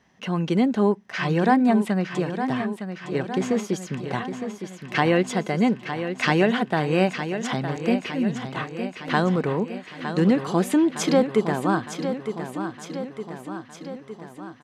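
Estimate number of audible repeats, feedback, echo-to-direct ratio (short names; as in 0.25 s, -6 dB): 6, 60%, -7.0 dB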